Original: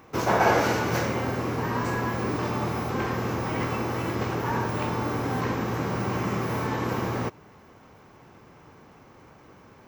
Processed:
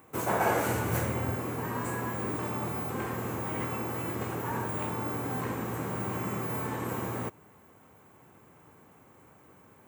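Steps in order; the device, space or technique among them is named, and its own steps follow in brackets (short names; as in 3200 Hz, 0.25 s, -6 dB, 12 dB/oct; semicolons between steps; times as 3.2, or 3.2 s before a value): 0.68–1.37 bell 85 Hz +9.5 dB 1.2 oct; budget condenser microphone (HPF 62 Hz; resonant high shelf 6900 Hz +10 dB, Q 3); gain -6 dB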